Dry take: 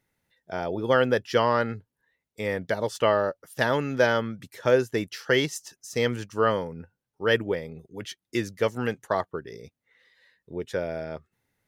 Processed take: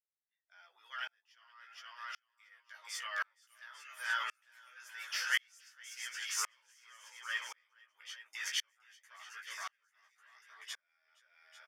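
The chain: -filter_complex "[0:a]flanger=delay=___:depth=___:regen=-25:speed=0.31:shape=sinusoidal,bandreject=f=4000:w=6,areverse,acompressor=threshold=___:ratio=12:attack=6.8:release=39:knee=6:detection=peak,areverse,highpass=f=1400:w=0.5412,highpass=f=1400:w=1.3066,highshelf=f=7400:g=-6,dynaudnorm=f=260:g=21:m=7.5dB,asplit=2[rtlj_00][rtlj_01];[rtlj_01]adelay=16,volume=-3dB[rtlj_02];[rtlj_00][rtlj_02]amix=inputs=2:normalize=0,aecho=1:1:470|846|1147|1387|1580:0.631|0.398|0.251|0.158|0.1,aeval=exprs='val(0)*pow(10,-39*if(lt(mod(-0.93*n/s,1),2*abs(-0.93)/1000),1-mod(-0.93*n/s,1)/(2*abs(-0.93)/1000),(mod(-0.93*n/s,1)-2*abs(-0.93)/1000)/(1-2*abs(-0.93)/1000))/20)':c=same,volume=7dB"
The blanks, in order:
9.2, 2.4, -38dB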